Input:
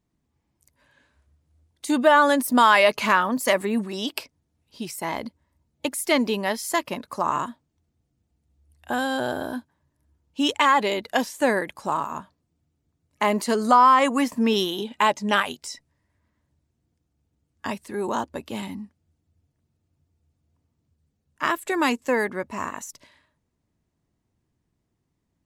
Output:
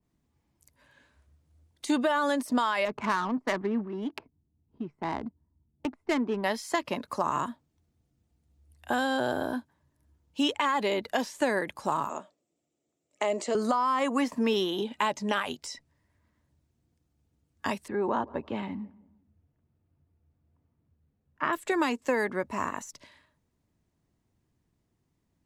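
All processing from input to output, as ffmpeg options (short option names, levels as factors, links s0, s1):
-filter_complex "[0:a]asettb=1/sr,asplit=3[s0][s1][s2];[s0]atrim=end=2.854[s3];[s1]atrim=start=2.85:end=6.44,asetpts=PTS-STARTPTS,afade=t=in:d=0.004:c=qsin,afade=t=out:st=3.586:d=0.004:c=qsin,lowpass=f=1400:p=1,equalizer=f=550:t=o:w=0.29:g=-15,adynamicsmooth=sensitivity=2.5:basefreq=650[s4];[s2]atrim=start=6.436[s5];[s3][s4]acrossfade=d=0.004:c1=hsin:c2=qsin[s6];[s6][s5]acrossfade=d=0.004:c1=qsin:c2=hsin,asettb=1/sr,asplit=3[s7][s8][s9];[s7]atrim=end=12.094[s10];[s8]atrim=start=12.09:end=13.55,asetpts=PTS-STARTPTS,afade=t=in:d=0.004:c=qsin,afade=t=out:st=1.456:d=0.004:c=qsin,acompressor=threshold=0.0708:ratio=2.5:attack=3.2:release=140:knee=1:detection=peak,highpass=340,equalizer=f=360:t=q:w=4:g=4,equalizer=f=590:t=q:w=4:g=8,equalizer=f=1000:t=q:w=4:g=-9,equalizer=f=1600:t=q:w=4:g=-8,equalizer=f=4500:t=q:w=4:g=-5,equalizer=f=7600:t=q:w=4:g=10,lowpass=f=8000:w=0.5412,lowpass=f=8000:w=1.3066[s11];[s9]atrim=start=13.546[s12];[s10][s11]acrossfade=d=0.004:c1=hsin:c2=qsin[s13];[s13][s12]acrossfade=d=0.004:c1=qsin:c2=hsin,asettb=1/sr,asplit=3[s14][s15][s16];[s14]atrim=end=17.884[s17];[s15]atrim=start=17.88:end=21.53,asetpts=PTS-STARTPTS,afade=t=in:d=0.004:c=qsin,afade=t=out:st=3.646:d=0.004:c=qsin,lowpass=2100,asplit=2[s18][s19];[s19]adelay=166,lowpass=f=1200:p=1,volume=0.0841,asplit=2[s20][s21];[s21]adelay=166,lowpass=f=1200:p=1,volume=0.43,asplit=2[s22][s23];[s23]adelay=166,lowpass=f=1200:p=1,volume=0.43[s24];[s18][s20][s22][s24]amix=inputs=4:normalize=0,atrim=end_sample=160965[s25];[s16]atrim=start=21.526[s26];[s17][s25]acrossfade=d=0.004:c1=hsin:c2=qsin[s27];[s27][s26]acrossfade=d=0.004:c1=qsin:c2=hsin,alimiter=limit=0.266:level=0:latency=1:release=91,acrossover=split=260|3400|7900[s28][s29][s30][s31];[s28]acompressor=threshold=0.0126:ratio=4[s32];[s29]acompressor=threshold=0.0631:ratio=4[s33];[s30]acompressor=threshold=0.0112:ratio=4[s34];[s31]acompressor=threshold=0.00158:ratio=4[s35];[s32][s33][s34][s35]amix=inputs=4:normalize=0,adynamicequalizer=threshold=0.01:dfrequency=1800:dqfactor=0.7:tfrequency=1800:tqfactor=0.7:attack=5:release=100:ratio=0.375:range=2:mode=cutabove:tftype=highshelf"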